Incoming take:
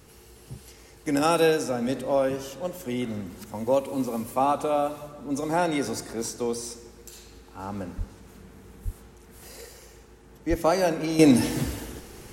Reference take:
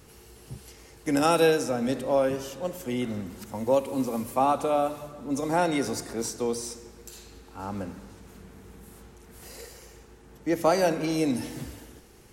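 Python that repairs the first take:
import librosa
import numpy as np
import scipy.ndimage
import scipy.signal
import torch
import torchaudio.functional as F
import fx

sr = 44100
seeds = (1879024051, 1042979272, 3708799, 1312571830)

y = fx.fix_deplosive(x, sr, at_s=(7.97, 8.84, 10.49))
y = fx.gain(y, sr, db=fx.steps((0.0, 0.0), (11.19, -9.5)))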